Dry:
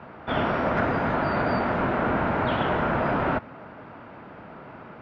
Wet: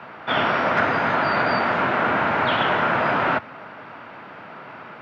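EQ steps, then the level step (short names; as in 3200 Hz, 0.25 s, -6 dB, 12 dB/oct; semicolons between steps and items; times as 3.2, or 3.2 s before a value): HPF 93 Hz 24 dB/oct; tilt shelf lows -6.5 dB, about 790 Hz; +4.0 dB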